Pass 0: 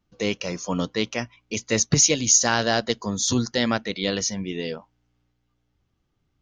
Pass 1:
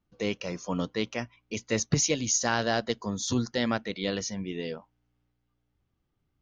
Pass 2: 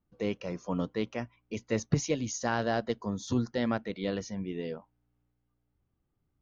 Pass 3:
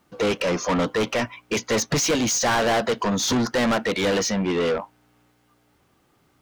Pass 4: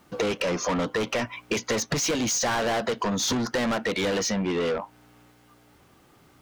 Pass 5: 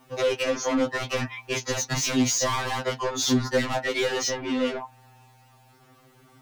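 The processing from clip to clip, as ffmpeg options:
-af "highshelf=f=4.5k:g=-7.5,volume=-4.5dB"
-af "highshelf=f=2.4k:g=-12,volume=-1dB"
-filter_complex "[0:a]asplit=2[a][b];[b]highpass=f=720:p=1,volume=33dB,asoftclip=type=tanh:threshold=-13.5dB[c];[a][c]amix=inputs=2:normalize=0,lowpass=f=6.6k:p=1,volume=-6dB"
-af "acompressor=threshold=-31dB:ratio=6,volume=6dB"
-af "afftfilt=real='re*2.45*eq(mod(b,6),0)':imag='im*2.45*eq(mod(b,6),0)':win_size=2048:overlap=0.75,volume=3dB"

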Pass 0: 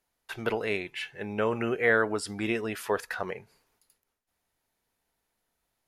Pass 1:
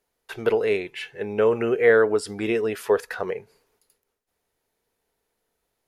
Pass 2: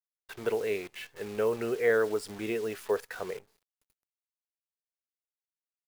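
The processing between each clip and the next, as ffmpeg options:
-af "equalizer=f=440:t=o:w=0.56:g=9.5,volume=1.5dB"
-af "acrusher=bits=7:dc=4:mix=0:aa=0.000001,volume=-8.5dB"

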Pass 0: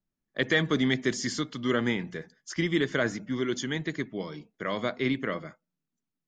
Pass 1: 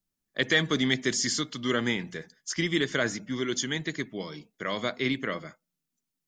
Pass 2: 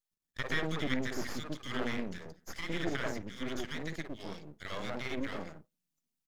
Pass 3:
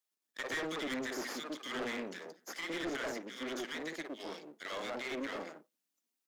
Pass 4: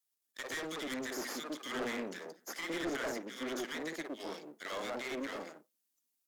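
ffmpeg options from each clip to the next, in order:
-af "highshelf=f=3k:g=10.5,volume=-1.5dB"
-filter_complex "[0:a]acrossover=split=460|1400[a][b][c];[b]adelay=50[d];[a]adelay=110[e];[e][d][c]amix=inputs=3:normalize=0,aeval=exprs='max(val(0),0)':c=same,acrossover=split=2700[f][g];[g]acompressor=threshold=-46dB:ratio=4:attack=1:release=60[h];[f][h]amix=inputs=2:normalize=0,volume=-1dB"
-af "highpass=f=270:w=0.5412,highpass=f=270:w=1.3066,asoftclip=type=tanh:threshold=-35dB,volume=2.5dB"
-filter_complex "[0:a]acrossover=split=2200[a][b];[a]dynaudnorm=f=210:g=11:m=5dB[c];[b]aemphasis=mode=production:type=cd[d];[c][d]amix=inputs=2:normalize=0,volume=-3.5dB"

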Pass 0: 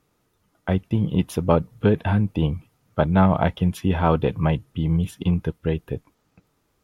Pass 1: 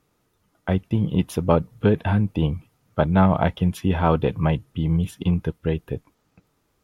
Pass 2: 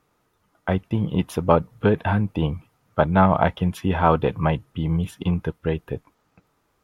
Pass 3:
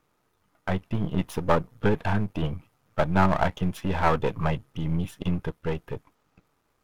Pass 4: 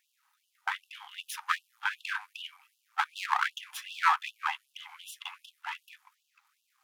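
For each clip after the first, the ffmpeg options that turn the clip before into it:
-af anull
-af "equalizer=f=1.1k:w=0.59:g=6.5,volume=-2dB"
-af "aeval=exprs='if(lt(val(0),0),0.251*val(0),val(0))':c=same"
-af "afftfilt=real='re*gte(b*sr/1024,730*pow(2700/730,0.5+0.5*sin(2*PI*2.6*pts/sr)))':imag='im*gte(b*sr/1024,730*pow(2700/730,0.5+0.5*sin(2*PI*2.6*pts/sr)))':win_size=1024:overlap=0.75,volume=3dB"

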